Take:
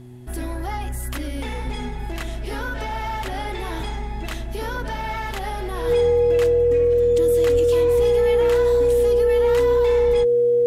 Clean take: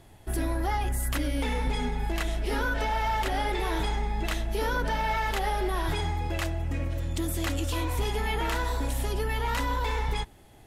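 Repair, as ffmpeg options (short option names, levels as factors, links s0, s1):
-filter_complex "[0:a]bandreject=f=123.3:t=h:w=4,bandreject=f=246.6:t=h:w=4,bandreject=f=369.9:t=h:w=4,bandreject=f=480:w=30,asplit=3[s0][s1][s2];[s0]afade=t=out:st=7.52:d=0.02[s3];[s1]highpass=f=140:w=0.5412,highpass=f=140:w=1.3066,afade=t=in:st=7.52:d=0.02,afade=t=out:st=7.64:d=0.02[s4];[s2]afade=t=in:st=7.64:d=0.02[s5];[s3][s4][s5]amix=inputs=3:normalize=0"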